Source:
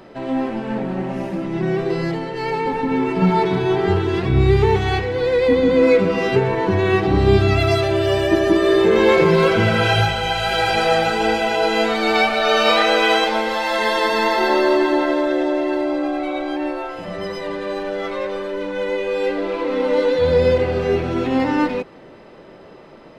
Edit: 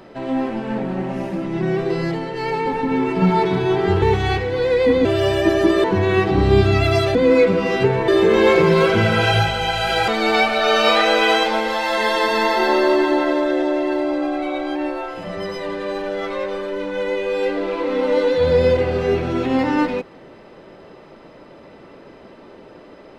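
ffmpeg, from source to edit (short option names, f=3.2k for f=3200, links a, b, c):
-filter_complex "[0:a]asplit=7[a][b][c][d][e][f][g];[a]atrim=end=4.022[h];[b]atrim=start=4.638:end=5.672[i];[c]atrim=start=7.908:end=8.702[j];[d]atrim=start=6.598:end=7.912[k];[e]atrim=start=5.668:end=6.602[l];[f]atrim=start=8.698:end=10.702[m];[g]atrim=start=11.888[n];[h][i]acrossfade=d=0.004:c1=hsin:c2=hsin[o];[o][j]acrossfade=d=0.004:c1=hsin:c2=hsin[p];[p][k]acrossfade=d=0.004:c1=hsin:c2=hsin[q];[q][l]acrossfade=d=0.004:c1=hsin:c2=hsin[r];[r][m]acrossfade=d=0.004:c1=hsin:c2=hsin[s];[s][n]acrossfade=d=0.004:c1=hsin:c2=hsin"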